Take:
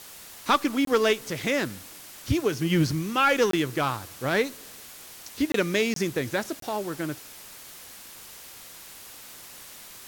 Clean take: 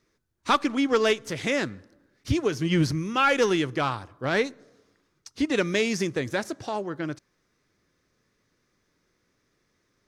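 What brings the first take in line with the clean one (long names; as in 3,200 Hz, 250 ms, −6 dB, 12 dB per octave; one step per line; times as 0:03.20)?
repair the gap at 0:00.85/0:03.51/0:05.52/0:05.94/0:06.60, 23 ms
broadband denoise 27 dB, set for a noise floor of −45 dBFS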